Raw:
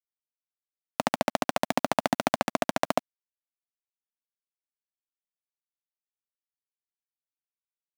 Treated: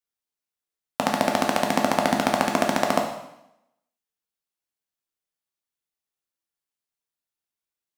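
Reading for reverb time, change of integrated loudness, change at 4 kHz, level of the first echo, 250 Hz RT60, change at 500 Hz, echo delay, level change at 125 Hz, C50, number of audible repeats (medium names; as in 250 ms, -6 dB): 0.80 s, +5.5 dB, +5.0 dB, no echo, 0.90 s, +5.0 dB, no echo, +6.0 dB, 6.0 dB, no echo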